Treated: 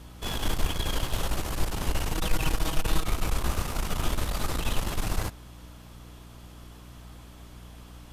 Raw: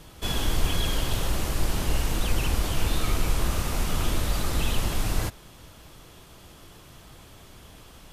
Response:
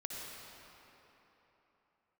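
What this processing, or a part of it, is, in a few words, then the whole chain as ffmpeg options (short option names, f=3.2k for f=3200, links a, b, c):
valve amplifier with mains hum: -filter_complex "[0:a]asettb=1/sr,asplit=3[a][b][c];[a]atrim=end=2.134[d];[b]atrim=start=2.13:end=3.06,asetpts=PTS-STARTPTS,afade=t=in:d=0.004:c=qsin,afade=t=out:st=0.926:d=0.004:c=qsin,aecho=1:1:6.3:0.76,atrim=end_sample=41013[e];[c]atrim=start=3.056[f];[d][e]acrossfade=d=0.004:c1=hsin:c2=qsin[g];[g][f]acrossfade=d=0.004:c1=qsin:c2=hsin,aeval=exprs='(tanh(7.08*val(0)+0.65)-tanh(0.65))/7.08':c=same,aeval=exprs='val(0)+0.00501*(sin(2*PI*60*n/s)+sin(2*PI*2*60*n/s)/2+sin(2*PI*3*60*n/s)/3+sin(2*PI*4*60*n/s)/4+sin(2*PI*5*60*n/s)/5)':c=same,equalizer=f=1k:t=o:w=1.4:g=3"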